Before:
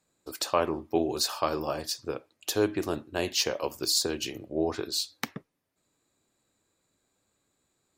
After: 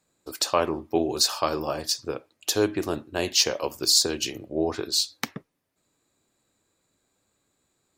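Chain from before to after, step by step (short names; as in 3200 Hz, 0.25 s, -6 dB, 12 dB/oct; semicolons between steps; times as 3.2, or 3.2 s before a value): dynamic EQ 5800 Hz, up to +5 dB, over -40 dBFS, Q 0.83; gain +2.5 dB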